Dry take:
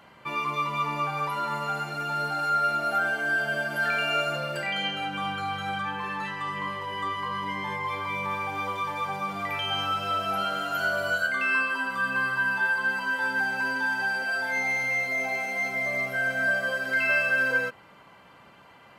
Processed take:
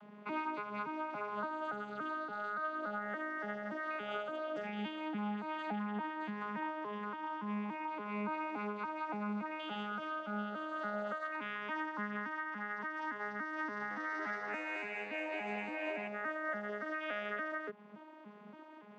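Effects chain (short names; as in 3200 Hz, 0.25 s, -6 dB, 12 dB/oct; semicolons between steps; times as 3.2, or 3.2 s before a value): arpeggiated vocoder bare fifth, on G#3, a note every 0.285 s; compressor 3:1, threshold -36 dBFS, peak gain reduction 12.5 dB; high shelf 2000 Hz -8.5 dB; 13.69–16.08 frequency-shifting echo 0.217 s, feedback 55%, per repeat +97 Hz, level -7 dB; noise-modulated level, depth 50%; gain +1 dB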